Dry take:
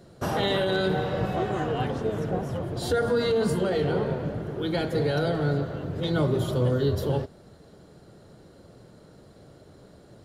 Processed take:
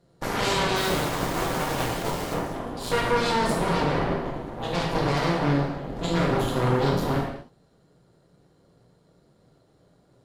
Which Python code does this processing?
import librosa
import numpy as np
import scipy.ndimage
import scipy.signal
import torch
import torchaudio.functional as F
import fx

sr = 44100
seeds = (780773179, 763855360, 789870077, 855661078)

y = fx.quant_dither(x, sr, seeds[0], bits=6, dither='none', at=(0.76, 2.34))
y = fx.cheby_harmonics(y, sr, harmonics=(6, 7), levels_db=(-8, -14), full_scale_db=-13.0)
y = fx.rev_gated(y, sr, seeds[1], gate_ms=270, shape='falling', drr_db=-2.0)
y = F.gain(torch.from_numpy(y), -6.5).numpy()